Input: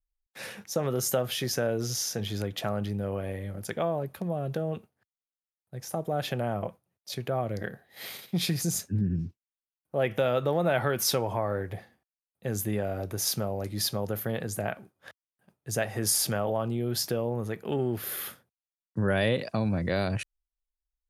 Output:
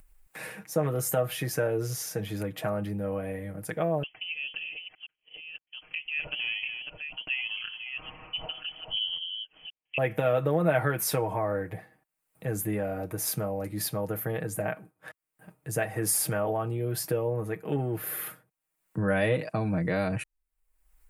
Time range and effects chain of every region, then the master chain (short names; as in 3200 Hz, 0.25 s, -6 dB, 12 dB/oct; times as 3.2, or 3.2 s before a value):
4.03–9.98 reverse delay 0.515 s, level -6.5 dB + bell 1700 Hz -10 dB 0.75 oct + inverted band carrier 3200 Hz
whole clip: band shelf 4500 Hz -9 dB 1.3 oct; comb 6.4 ms, depth 70%; upward compressor, threshold -37 dBFS; gain -1 dB